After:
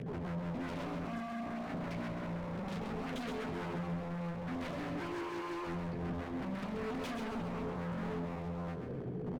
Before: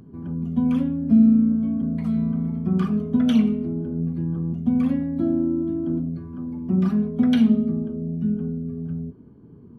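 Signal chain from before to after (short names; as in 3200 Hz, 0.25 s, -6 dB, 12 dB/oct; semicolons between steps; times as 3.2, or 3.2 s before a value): graphic EQ 125/250/500/1000/2000 Hz +12/-7/+8/-11/+7 dB; compressor 4:1, threshold -29 dBFS, peak gain reduction 13.5 dB; chorus voices 6, 1.1 Hz, delay 15 ms, depth 3 ms; overdrive pedal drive 36 dB, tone 2200 Hz, clips at -19 dBFS; rotary speaker horn 5.5 Hz, later 1.1 Hz, at 6.69; wavefolder -28 dBFS; feedback echo 0.138 s, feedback 34%, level -6 dB; speed mistake 24 fps film run at 25 fps; gain -8 dB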